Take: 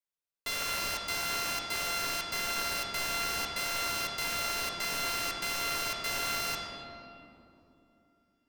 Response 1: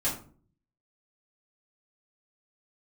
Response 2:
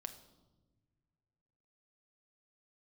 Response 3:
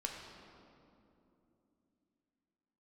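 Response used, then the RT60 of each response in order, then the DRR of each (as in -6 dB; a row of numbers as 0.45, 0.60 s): 3; 0.45 s, not exponential, 2.9 s; -10.0, 7.0, 0.0 dB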